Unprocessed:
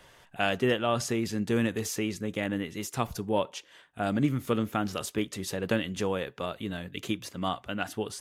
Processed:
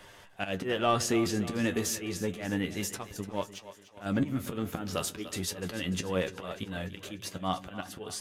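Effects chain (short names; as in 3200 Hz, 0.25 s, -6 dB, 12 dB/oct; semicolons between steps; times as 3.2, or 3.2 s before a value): 3.01–4.06 power-law curve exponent 1.4; auto swell 0.183 s; in parallel at -7 dB: soft clip -30.5 dBFS, distortion -9 dB; on the sum: flange 0.29 Hz, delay 9.9 ms, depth 2.3 ms, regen +44%; split-band echo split 370 Hz, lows 0.145 s, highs 0.295 s, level -14 dB; gain +4 dB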